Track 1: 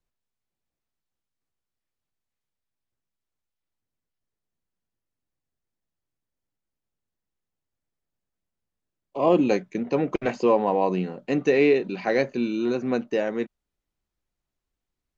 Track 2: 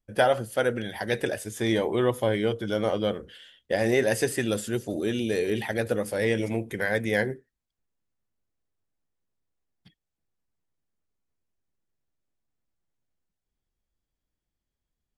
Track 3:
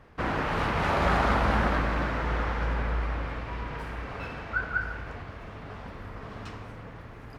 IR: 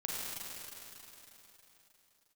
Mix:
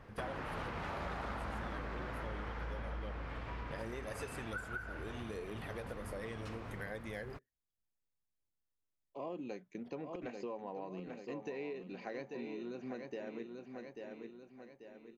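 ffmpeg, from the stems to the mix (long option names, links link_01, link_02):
-filter_complex "[0:a]volume=-15dB,asplit=2[link_01][link_02];[link_02]volume=-8.5dB[link_03];[1:a]aphaser=in_gain=1:out_gain=1:delay=2.3:decay=0.34:speed=1.3:type=triangular,volume=-13.5dB[link_04];[2:a]volume=-2dB[link_05];[link_03]aecho=0:1:839|1678|2517|3356|4195|5034:1|0.44|0.194|0.0852|0.0375|0.0165[link_06];[link_01][link_04][link_05][link_06]amix=inputs=4:normalize=0,acompressor=threshold=-40dB:ratio=5"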